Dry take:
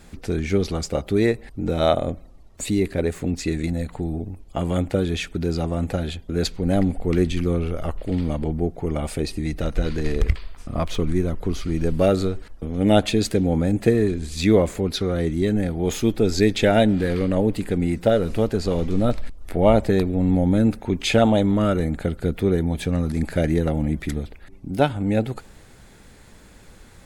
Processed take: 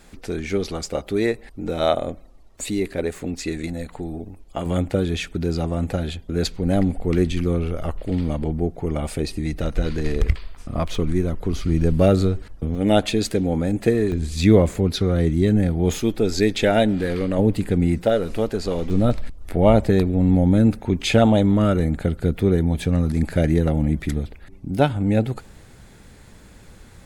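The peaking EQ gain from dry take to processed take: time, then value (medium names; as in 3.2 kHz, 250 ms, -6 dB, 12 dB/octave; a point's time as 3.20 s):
peaking EQ 100 Hz 2.3 oct
-7 dB
from 4.66 s +1 dB
from 11.53 s +7 dB
from 12.75 s -2.5 dB
from 14.12 s +6.5 dB
from 15.99 s -3 dB
from 17.39 s +5.5 dB
from 18.02 s -5.5 dB
from 18.90 s +4 dB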